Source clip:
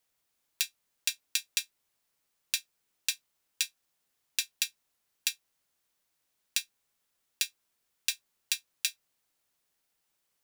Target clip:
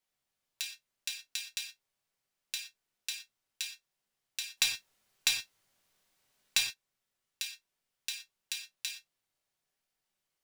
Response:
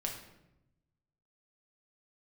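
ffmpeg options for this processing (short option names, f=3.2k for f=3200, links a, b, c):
-filter_complex "[0:a]asettb=1/sr,asplit=3[a][b][c];[a]atrim=end=4.574[d];[b]atrim=start=4.57:end=6.61,asetpts=PTS-STARTPTS,afade=t=in:d=0.004:c=qsin,afade=t=out:st=2.036:d=0.004:c=qsin,aeval=exprs='0.596*sin(PI/2*2.24*val(0)/0.596)':c=same[e];[c]atrim=start=6.606[f];[d][e]acrossfade=d=0.004:c1=hsin:c2=qsin[g];[g][f]acrossfade=d=0.004:c1=qsin:c2=hsin,highshelf=f=11k:g=-6.5[h];[1:a]atrim=start_sample=2205,afade=t=out:st=0.18:d=0.01,atrim=end_sample=8379[i];[h][i]afir=irnorm=-1:irlink=0,volume=-5.5dB"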